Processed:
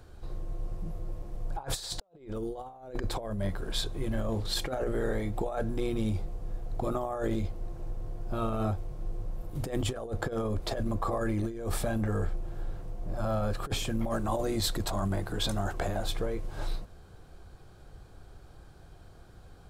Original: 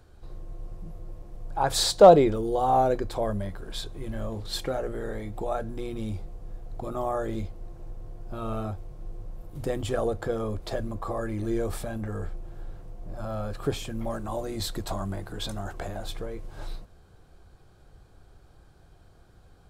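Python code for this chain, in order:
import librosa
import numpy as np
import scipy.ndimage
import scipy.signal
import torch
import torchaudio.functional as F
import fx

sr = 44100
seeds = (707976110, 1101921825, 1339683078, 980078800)

y = fx.over_compress(x, sr, threshold_db=-31.0, ratio=-0.5)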